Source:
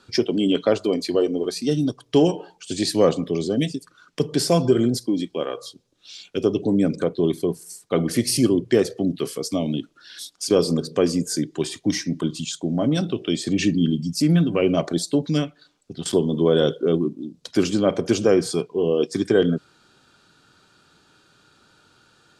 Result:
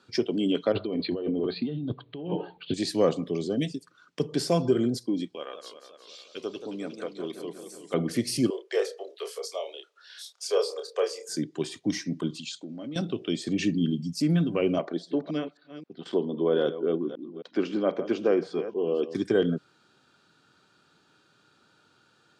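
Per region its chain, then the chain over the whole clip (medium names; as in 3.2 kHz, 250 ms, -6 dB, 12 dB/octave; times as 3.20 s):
0.72–2.74 s: steep low-pass 4.3 kHz 96 dB/octave + bass shelf 190 Hz +11 dB + compressor with a negative ratio -24 dBFS
5.35–7.94 s: high-pass 1 kHz 6 dB/octave + modulated delay 180 ms, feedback 69%, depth 175 cents, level -9.5 dB
8.50–11.29 s: steep high-pass 410 Hz 72 dB/octave + doubling 29 ms -5 dB
12.38–12.96 s: compression 2.5:1, threshold -28 dBFS + cabinet simulation 170–8600 Hz, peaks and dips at 180 Hz -6 dB, 420 Hz -7 dB, 710 Hz -9 dB, 1 kHz -8 dB, 2.5 kHz +6 dB, 4.3 kHz +8 dB
14.78–19.15 s: chunks repeated in reverse 264 ms, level -12.5 dB + band-pass 250–2800 Hz
whole clip: high-pass 110 Hz; treble shelf 7.8 kHz -8.5 dB; trim -5.5 dB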